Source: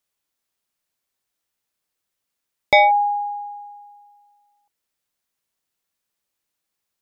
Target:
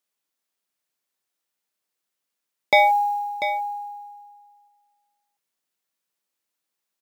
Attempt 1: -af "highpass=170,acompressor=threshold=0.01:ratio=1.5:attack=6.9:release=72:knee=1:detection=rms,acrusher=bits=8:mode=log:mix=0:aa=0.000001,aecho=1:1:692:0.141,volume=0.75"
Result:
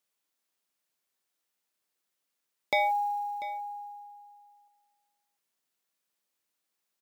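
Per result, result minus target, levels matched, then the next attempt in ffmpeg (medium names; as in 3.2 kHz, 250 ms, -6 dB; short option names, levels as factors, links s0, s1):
compression: peak gain reduction +11 dB; echo-to-direct -6.5 dB
-af "highpass=170,acrusher=bits=8:mode=log:mix=0:aa=0.000001,aecho=1:1:692:0.141,volume=0.75"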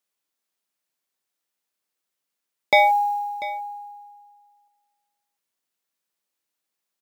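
echo-to-direct -6.5 dB
-af "highpass=170,acrusher=bits=8:mode=log:mix=0:aa=0.000001,aecho=1:1:692:0.299,volume=0.75"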